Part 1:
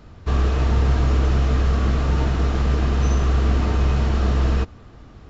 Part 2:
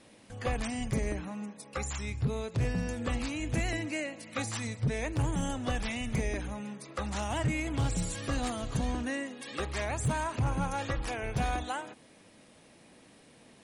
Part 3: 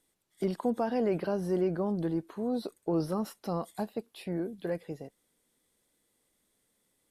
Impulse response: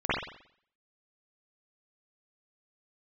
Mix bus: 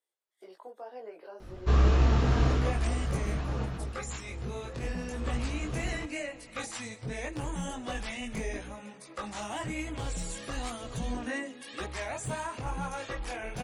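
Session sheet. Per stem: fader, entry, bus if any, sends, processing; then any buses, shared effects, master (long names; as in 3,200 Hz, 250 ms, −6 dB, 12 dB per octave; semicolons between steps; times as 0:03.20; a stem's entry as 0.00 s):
0:02.49 0 dB → 0:02.75 −9 dB → 0:03.57 −9 dB → 0:04.08 −20.5 dB → 0:05.05 −20.5 dB → 0:05.26 −12.5 dB, 1.40 s, no send, no processing
+1.5 dB, 2.20 s, no send, parametric band 94 Hz −9.5 dB 1.9 octaves
−8.5 dB, 0.00 s, no send, high-pass filter 420 Hz 24 dB per octave; high-shelf EQ 4,800 Hz −6.5 dB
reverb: not used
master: multi-voice chorus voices 4, 1 Hz, delay 20 ms, depth 4.2 ms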